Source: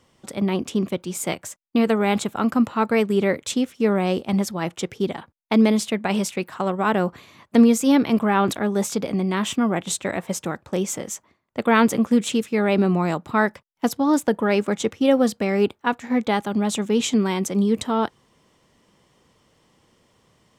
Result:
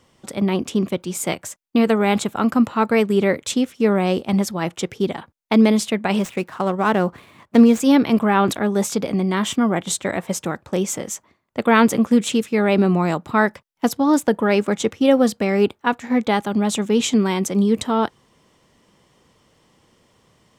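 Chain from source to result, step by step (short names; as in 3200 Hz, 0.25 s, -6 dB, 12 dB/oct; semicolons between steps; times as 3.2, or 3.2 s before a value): 6.19–7.8 median filter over 9 samples; 9.23–10.17 notch 2600 Hz, Q 13; gain +2.5 dB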